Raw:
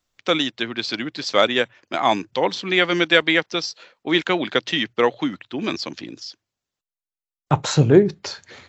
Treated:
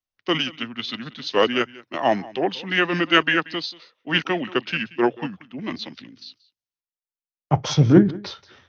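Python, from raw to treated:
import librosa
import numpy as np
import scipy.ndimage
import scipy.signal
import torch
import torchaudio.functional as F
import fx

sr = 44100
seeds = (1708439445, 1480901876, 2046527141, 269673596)

y = x + 10.0 ** (-18.5 / 20.0) * np.pad(x, (int(183 * sr / 1000.0), 0))[:len(x)]
y = fx.formant_shift(y, sr, semitones=-3)
y = fx.band_widen(y, sr, depth_pct=40)
y = y * 10.0 ** (-2.0 / 20.0)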